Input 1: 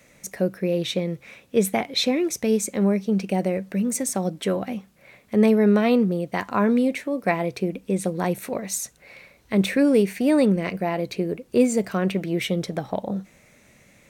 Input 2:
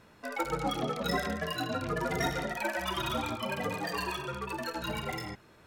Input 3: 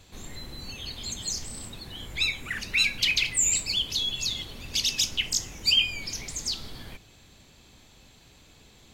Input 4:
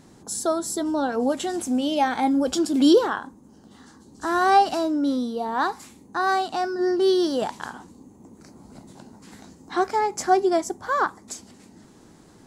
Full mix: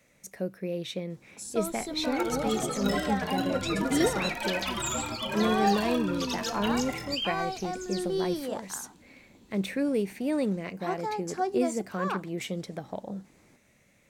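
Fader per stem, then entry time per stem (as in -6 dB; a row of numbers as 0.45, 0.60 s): -9.5, -0.5, -11.5, -10.5 dB; 0.00, 1.80, 1.45, 1.10 s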